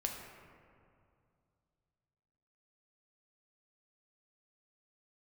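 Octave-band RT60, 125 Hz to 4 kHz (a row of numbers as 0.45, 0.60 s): 3.3, 2.7, 2.4, 2.3, 1.8, 1.2 s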